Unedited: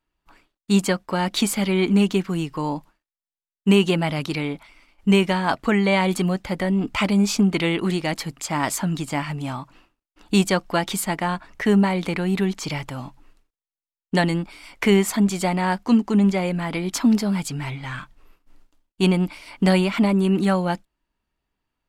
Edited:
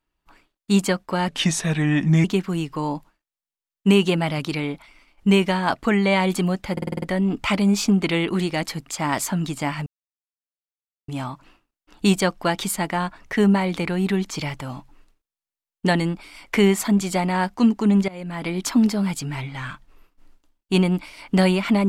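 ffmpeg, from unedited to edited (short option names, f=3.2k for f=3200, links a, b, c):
-filter_complex "[0:a]asplit=11[a][b][c][d][e][f][g][h][i][j][k];[a]atrim=end=1.284[l];[b]atrim=start=1.28:end=2.05,asetpts=PTS-STARTPTS,asetrate=35280,aresample=44100,atrim=end_sample=42446,asetpts=PTS-STARTPTS[m];[c]atrim=start=2.046:end=6.582[n];[d]atrim=start=6.528:end=6.582[o];[e]atrim=start=6.528:end=6.582[p];[f]atrim=start=6.528:end=6.582[q];[g]atrim=start=6.528:end=6.582[r];[h]atrim=start=6.528:end=6.582[s];[i]atrim=start=6.528:end=9.37,asetpts=PTS-STARTPTS,afade=t=out:st=2.838:d=0.004:c=hsin,apad=pad_dur=1.22[t];[j]atrim=start=9.37:end=16.37,asetpts=PTS-STARTPTS,afade=t=in:d=0.004:c=hsin,afade=t=out:st=6.996:d=0.004:c=hsin:silence=0.0841395[u];[k]atrim=start=16.37,asetpts=PTS-STARTPTS,afade=t=in:d=0.43:silence=0.0841395[v];[l][m]acrossfade=d=0.004:c1=hsin:c2=hsin[w];[w][n]acrossfade=d=0.004:c1=hsin:c2=hsin[x];[x][o]acrossfade=d=0.004:c1=hsin:c2=hsin[y];[y][p]acrossfade=d=0.004:c1=hsin:c2=hsin[z];[z][q]acrossfade=d=0.004:c1=hsin:c2=hsin[aa];[aa][r]acrossfade=d=0.004:c1=hsin:c2=hsin[ab];[ab][s]acrossfade=d=0.004:c1=hsin:c2=hsin[ac];[t][u][v]concat=n=3:v=0:a=1[ad];[ac][ad]acrossfade=d=0.004:c1=hsin:c2=hsin"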